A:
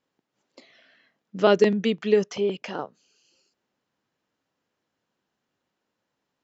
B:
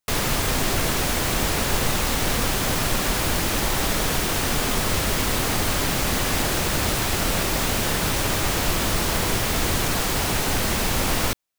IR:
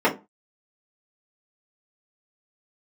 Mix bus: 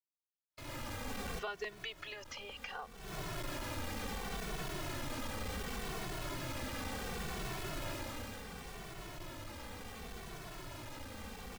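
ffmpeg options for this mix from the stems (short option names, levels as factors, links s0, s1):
-filter_complex "[0:a]highpass=1100,acompressor=threshold=0.02:ratio=5,acrusher=bits=9:mix=0:aa=0.000001,volume=1,asplit=2[s0][s1];[1:a]asoftclip=type=hard:threshold=0.0501,adelay=500,volume=0.398,afade=t=out:st=7.89:d=0.54:silence=0.473151[s2];[s1]apad=whole_len=532950[s3];[s2][s3]sidechaincompress=threshold=0.00158:ratio=5:attack=12:release=248[s4];[s0][s4]amix=inputs=2:normalize=0,highshelf=f=4300:g=-9,asplit=2[s5][s6];[s6]adelay=2.2,afreqshift=-0.69[s7];[s5][s7]amix=inputs=2:normalize=1"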